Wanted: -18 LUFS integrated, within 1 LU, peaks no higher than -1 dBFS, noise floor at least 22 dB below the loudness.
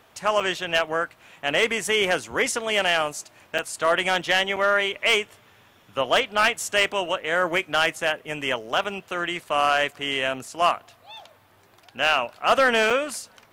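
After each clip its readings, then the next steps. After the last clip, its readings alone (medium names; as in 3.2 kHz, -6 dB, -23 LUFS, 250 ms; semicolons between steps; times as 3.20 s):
clipped samples 0.3%; clipping level -11.0 dBFS; dropouts 5; longest dropout 5.5 ms; loudness -23.0 LUFS; peak level -11.0 dBFS; loudness target -18.0 LUFS
-> clip repair -11 dBFS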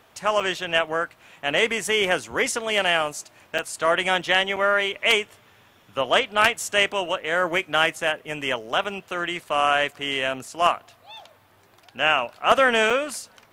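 clipped samples 0.0%; dropouts 5; longest dropout 5.5 ms
-> interpolate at 0.40/3.58/4.56/8.84/12.90 s, 5.5 ms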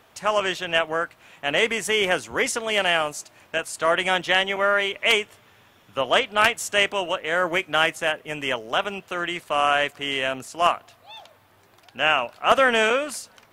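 dropouts 0; loudness -22.5 LUFS; peak level -2.0 dBFS; loudness target -18.0 LUFS
-> trim +4.5 dB; peak limiter -1 dBFS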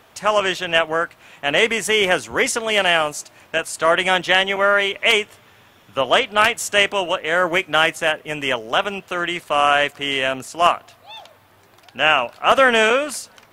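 loudness -18.0 LUFS; peak level -1.0 dBFS; noise floor -52 dBFS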